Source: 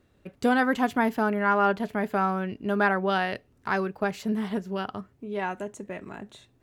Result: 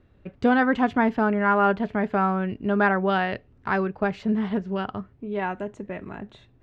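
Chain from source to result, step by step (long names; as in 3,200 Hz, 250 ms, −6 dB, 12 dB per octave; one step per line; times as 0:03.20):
low-pass filter 3,200 Hz 12 dB per octave
low-shelf EQ 110 Hz +9.5 dB
level +2 dB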